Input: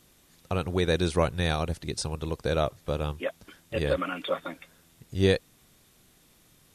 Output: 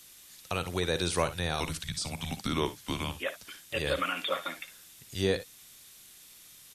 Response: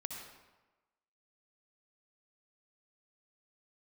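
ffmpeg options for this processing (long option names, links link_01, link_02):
-filter_complex "[0:a]tiltshelf=frequency=1300:gain=-9,acrossover=split=160|1200[link_01][link_02][link_03];[link_03]alimiter=level_in=1.5dB:limit=-24dB:level=0:latency=1:release=56,volume=-1.5dB[link_04];[link_01][link_02][link_04]amix=inputs=3:normalize=0,asettb=1/sr,asplit=3[link_05][link_06][link_07];[link_05]atrim=end=1.604[link_08];[link_06]atrim=start=1.6:end=3.11,asetpts=PTS-STARTPTS,afade=type=in:duration=0.004:curve=qsin,afade=type=out:start_time=1.506:duration=0.004:curve=qsin,afreqshift=-240[link_09];[link_07]atrim=start=3.106[link_10];[link_08][link_09]acrossfade=duration=0.004:curve1=hsin:curve2=qsin[link_11];[link_11][link_10]acrossfade=duration=0.004:curve1=qsin:curve2=hsin,aecho=1:1:57|67:0.211|0.133,volume=1.5dB"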